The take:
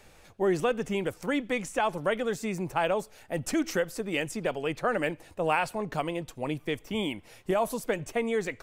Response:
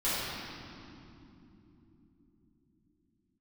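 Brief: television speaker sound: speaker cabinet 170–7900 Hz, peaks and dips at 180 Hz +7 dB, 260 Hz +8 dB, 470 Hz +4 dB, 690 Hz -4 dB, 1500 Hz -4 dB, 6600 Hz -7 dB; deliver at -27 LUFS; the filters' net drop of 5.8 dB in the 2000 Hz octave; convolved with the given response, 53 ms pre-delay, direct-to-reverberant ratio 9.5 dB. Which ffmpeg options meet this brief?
-filter_complex "[0:a]equalizer=f=2k:t=o:g=-5.5,asplit=2[a][b];[1:a]atrim=start_sample=2205,adelay=53[c];[b][c]afir=irnorm=-1:irlink=0,volume=-20dB[d];[a][d]amix=inputs=2:normalize=0,highpass=f=170:w=0.5412,highpass=f=170:w=1.3066,equalizer=f=180:t=q:w=4:g=7,equalizer=f=260:t=q:w=4:g=8,equalizer=f=470:t=q:w=4:g=4,equalizer=f=690:t=q:w=4:g=-4,equalizer=f=1.5k:t=q:w=4:g=-4,equalizer=f=6.6k:t=q:w=4:g=-7,lowpass=f=7.9k:w=0.5412,lowpass=f=7.9k:w=1.3066,volume=1dB"

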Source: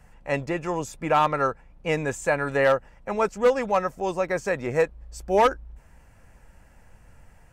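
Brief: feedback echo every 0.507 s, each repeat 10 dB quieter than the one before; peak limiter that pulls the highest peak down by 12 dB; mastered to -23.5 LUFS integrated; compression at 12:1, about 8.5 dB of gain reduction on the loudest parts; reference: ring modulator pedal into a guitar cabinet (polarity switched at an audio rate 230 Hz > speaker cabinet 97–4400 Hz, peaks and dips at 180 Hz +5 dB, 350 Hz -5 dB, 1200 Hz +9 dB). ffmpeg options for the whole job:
-af "acompressor=threshold=-23dB:ratio=12,alimiter=level_in=1dB:limit=-24dB:level=0:latency=1,volume=-1dB,aecho=1:1:507|1014|1521|2028:0.316|0.101|0.0324|0.0104,aeval=exprs='val(0)*sgn(sin(2*PI*230*n/s))':c=same,highpass=97,equalizer=f=180:t=q:w=4:g=5,equalizer=f=350:t=q:w=4:g=-5,equalizer=f=1.2k:t=q:w=4:g=9,lowpass=f=4.4k:w=0.5412,lowpass=f=4.4k:w=1.3066,volume=10dB"

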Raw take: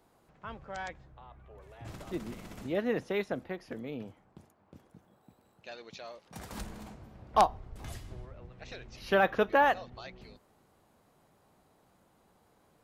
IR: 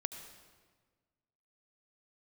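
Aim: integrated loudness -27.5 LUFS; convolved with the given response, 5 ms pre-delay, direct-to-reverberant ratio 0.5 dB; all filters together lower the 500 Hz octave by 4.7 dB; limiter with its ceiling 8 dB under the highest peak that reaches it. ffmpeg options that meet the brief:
-filter_complex "[0:a]equalizer=f=500:t=o:g=-6,alimiter=limit=-21dB:level=0:latency=1,asplit=2[a][b];[1:a]atrim=start_sample=2205,adelay=5[c];[b][c]afir=irnorm=-1:irlink=0,volume=0dB[d];[a][d]amix=inputs=2:normalize=0,volume=8.5dB"

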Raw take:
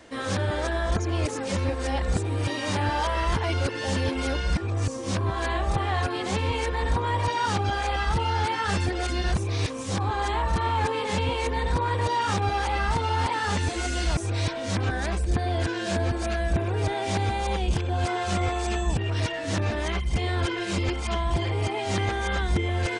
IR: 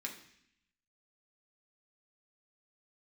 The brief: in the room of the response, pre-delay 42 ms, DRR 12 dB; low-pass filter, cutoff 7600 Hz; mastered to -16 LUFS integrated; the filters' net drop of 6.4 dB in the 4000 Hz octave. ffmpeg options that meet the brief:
-filter_complex "[0:a]lowpass=7.6k,equalizer=f=4k:t=o:g=-8.5,asplit=2[a][b];[1:a]atrim=start_sample=2205,adelay=42[c];[b][c]afir=irnorm=-1:irlink=0,volume=-11.5dB[d];[a][d]amix=inputs=2:normalize=0,volume=11dB"

